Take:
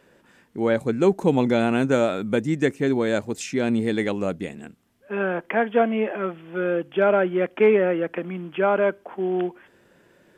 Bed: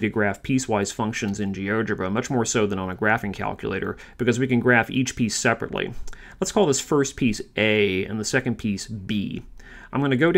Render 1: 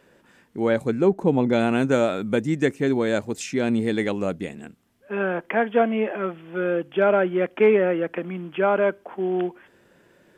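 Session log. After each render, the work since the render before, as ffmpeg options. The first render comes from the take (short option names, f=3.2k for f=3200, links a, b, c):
-filter_complex "[0:a]asettb=1/sr,asplit=3[a][b][c];[a]atrim=end=1.014[d];[b]atrim=start=1.01:end=1.53,asetpts=PTS-STARTPTS,afade=t=in:d=0.004:c=qsin,afade=t=out:st=0.516:d=0.004:c=qsin,highshelf=f=2.1k:g=-11.5[e];[c]atrim=start=1.526[f];[d][e]acrossfade=d=0.004:c1=hsin:c2=qsin[g];[g][f]acrossfade=d=0.004:c1=qsin:c2=hsin"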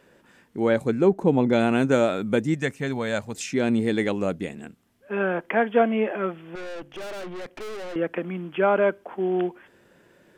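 -filter_complex "[0:a]asettb=1/sr,asplit=3[a][b][c];[a]atrim=end=2.544[d];[b]atrim=start=2.54:end=3.35,asetpts=PTS-STARTPTS,afade=t=in:d=0.004:c=qsin,afade=t=out:st=0.806:d=0.004:c=qsin,equalizer=f=340:t=o:w=0.86:g=-12[e];[c]atrim=start=3.346[f];[d][e]acrossfade=d=0.004:c1=hsin:c2=qsin[g];[g][f]acrossfade=d=0.004:c1=qsin:c2=hsin,asettb=1/sr,asplit=3[h][i][j];[h]atrim=end=6.554[k];[i]atrim=start=6.55:end=7.96,asetpts=PTS-STARTPTS,afade=t=in:d=0.004:c=qsin,afade=t=out:st=1.406:d=0.004:c=qsin,aeval=exprs='(tanh(50.1*val(0)+0.6)-tanh(0.6))/50.1':c=same[l];[j]atrim=start=7.956[m];[k][l]acrossfade=d=0.004:c1=hsin:c2=qsin[n];[n][m]acrossfade=d=0.004:c1=qsin:c2=hsin"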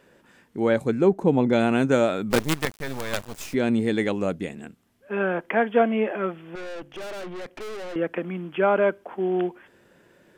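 -filter_complex "[0:a]asplit=3[a][b][c];[a]afade=t=out:st=2.3:d=0.02[d];[b]acrusher=bits=4:dc=4:mix=0:aa=0.000001,afade=t=in:st=2.3:d=0.02,afade=t=out:st=3.53:d=0.02[e];[c]afade=t=in:st=3.53:d=0.02[f];[d][e][f]amix=inputs=3:normalize=0"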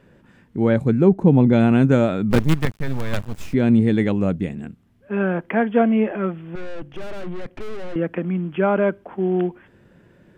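-af "bass=f=250:g=13,treble=f=4k:g=-7"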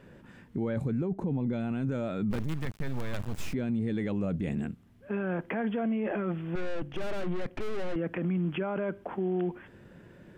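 -af "acompressor=threshold=-19dB:ratio=6,alimiter=limit=-23.5dB:level=0:latency=1:release=13"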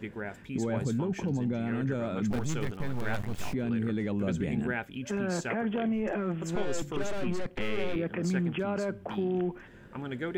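-filter_complex "[1:a]volume=-16dB[a];[0:a][a]amix=inputs=2:normalize=0"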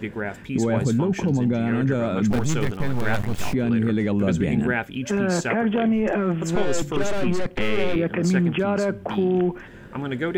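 -af "volume=9dB"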